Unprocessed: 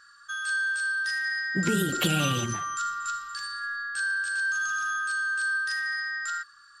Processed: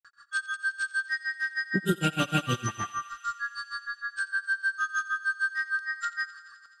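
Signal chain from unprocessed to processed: high shelf 3600 Hz -7 dB; notches 50/100/150 Hz; grains 0.114 s, grains 6.5/s, spray 0.324 s, pitch spread up and down by 0 st; thinning echo 86 ms, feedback 83%, high-pass 670 Hz, level -17 dB; gain +4.5 dB

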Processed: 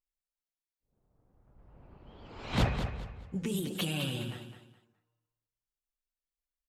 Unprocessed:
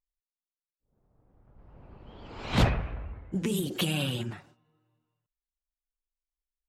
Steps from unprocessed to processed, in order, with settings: 2.66–3.46 notch comb 330 Hz; feedback echo 0.209 s, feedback 28%, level -9 dB; gain -4.5 dB

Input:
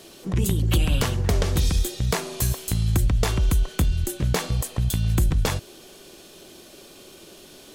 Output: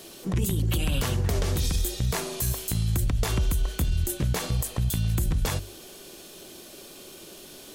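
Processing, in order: high shelf 9800 Hz +7.5 dB; notches 50/100 Hz; limiter -17 dBFS, peak gain reduction 9 dB

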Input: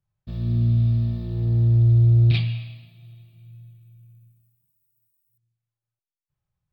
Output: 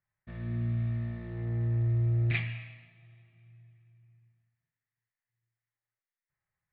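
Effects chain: ladder low-pass 2100 Hz, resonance 70%; low shelf 270 Hz -11 dB; gain +9 dB

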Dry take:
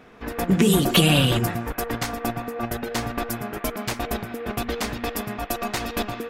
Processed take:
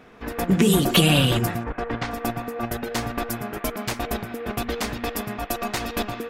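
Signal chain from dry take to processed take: 1.63–2.1 LPF 2000 Hz -> 3800 Hz 12 dB/oct

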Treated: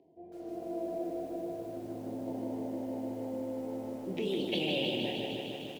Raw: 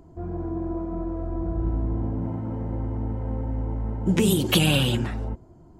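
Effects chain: air absorption 340 m; reverse; compressor 5:1, threshold -35 dBFS, peak gain reduction 16.5 dB; reverse; HPF 560 Hz 12 dB/oct; on a send: early reflections 26 ms -9 dB, 44 ms -12.5 dB; on the sum: AGC gain up to 13 dB; Butterworth band-stop 1300 Hz, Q 0.61; high shelf 2600 Hz -2.5 dB; lo-fi delay 0.153 s, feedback 80%, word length 10-bit, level -4.5 dB

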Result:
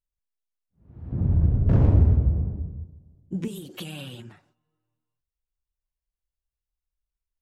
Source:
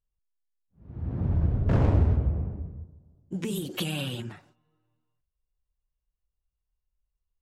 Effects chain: 1.12–3.48 low shelf 480 Hz +11 dB; gain -6 dB

